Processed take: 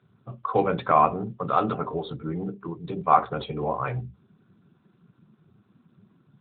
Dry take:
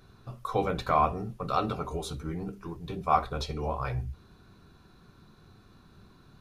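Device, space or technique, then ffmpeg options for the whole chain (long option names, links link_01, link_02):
mobile call with aggressive noise cancelling: -af "highpass=130,afftdn=noise_reduction=13:noise_floor=-46,volume=6dB" -ar 8000 -c:a libopencore_amrnb -b:a 12200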